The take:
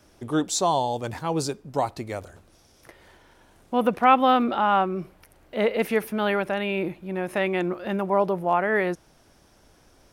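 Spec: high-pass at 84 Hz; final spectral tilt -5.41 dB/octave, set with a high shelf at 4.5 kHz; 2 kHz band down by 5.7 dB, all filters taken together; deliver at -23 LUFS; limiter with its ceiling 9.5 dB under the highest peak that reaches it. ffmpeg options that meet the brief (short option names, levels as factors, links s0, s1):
-af "highpass=84,equalizer=f=2000:t=o:g=-6.5,highshelf=f=4500:g=-5,volume=1.78,alimiter=limit=0.266:level=0:latency=1"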